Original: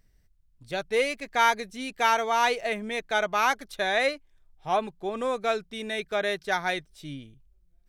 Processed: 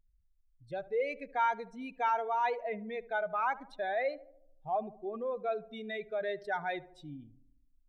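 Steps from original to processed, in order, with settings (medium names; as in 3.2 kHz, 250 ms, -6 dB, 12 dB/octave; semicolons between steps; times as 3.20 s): spectral contrast enhancement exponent 1.9; 2.60–4.05 s: low-pass 2.9 kHz 6 dB/octave; on a send: filtered feedback delay 74 ms, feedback 59%, low-pass 1.2 kHz, level -17 dB; on the sum: trim -7 dB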